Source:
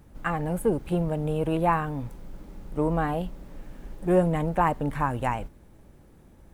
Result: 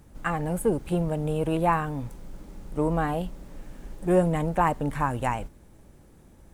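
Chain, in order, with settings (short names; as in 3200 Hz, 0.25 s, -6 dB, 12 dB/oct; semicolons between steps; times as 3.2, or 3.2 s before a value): bell 7800 Hz +5.5 dB 1.4 oct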